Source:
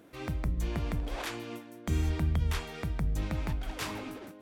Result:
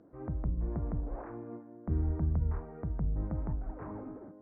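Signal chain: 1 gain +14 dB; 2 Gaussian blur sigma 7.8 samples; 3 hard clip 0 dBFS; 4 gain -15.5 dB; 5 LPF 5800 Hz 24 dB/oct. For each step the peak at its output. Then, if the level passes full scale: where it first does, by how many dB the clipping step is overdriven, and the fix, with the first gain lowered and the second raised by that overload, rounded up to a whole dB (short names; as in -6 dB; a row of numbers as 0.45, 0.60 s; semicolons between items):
-5.0, -5.5, -5.5, -21.0, -21.0 dBFS; no overload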